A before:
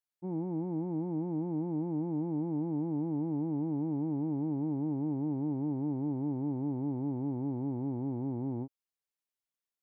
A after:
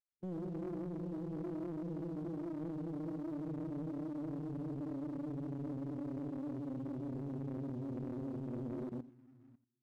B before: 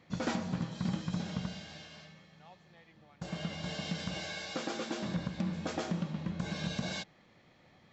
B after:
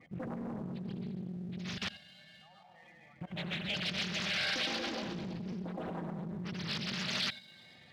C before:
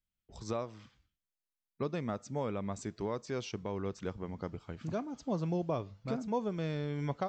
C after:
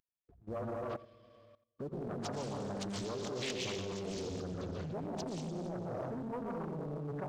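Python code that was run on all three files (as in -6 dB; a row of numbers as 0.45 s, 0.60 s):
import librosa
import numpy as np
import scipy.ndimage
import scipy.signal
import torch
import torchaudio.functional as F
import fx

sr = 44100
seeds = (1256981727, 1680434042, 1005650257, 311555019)

y = fx.cvsd(x, sr, bps=32000)
y = fx.spec_gate(y, sr, threshold_db=-10, keep='strong')
y = fx.high_shelf(y, sr, hz=2100.0, db=7.5)
y = fx.rev_plate(y, sr, seeds[0], rt60_s=1.5, hf_ratio=1.0, predelay_ms=110, drr_db=-1.5)
y = fx.level_steps(y, sr, step_db=22)
y = fx.leveller(y, sr, passes=1)
y = fx.tilt_shelf(y, sr, db=-4.5, hz=1100.0)
y = y + 10.0 ** (-16.0 / 20.0) * np.pad(y, (int(87 * sr / 1000.0), 0))[:len(y)]
y = fx.doppler_dist(y, sr, depth_ms=0.62)
y = y * 10.0 ** (5.5 / 20.0)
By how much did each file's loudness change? -8.0 LU, +0.5 LU, -2.5 LU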